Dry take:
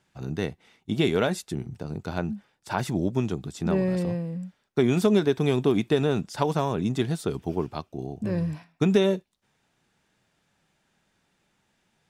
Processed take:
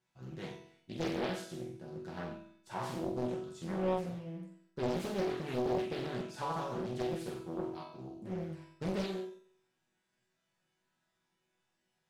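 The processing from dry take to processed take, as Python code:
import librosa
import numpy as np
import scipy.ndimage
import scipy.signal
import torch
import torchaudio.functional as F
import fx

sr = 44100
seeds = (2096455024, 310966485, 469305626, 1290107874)

y = fx.resonator_bank(x, sr, root=47, chord='sus4', decay_s=0.47)
y = fx.room_flutter(y, sr, wall_m=7.8, rt60_s=0.62)
y = fx.doppler_dist(y, sr, depth_ms=0.94)
y = F.gain(torch.from_numpy(y), 3.5).numpy()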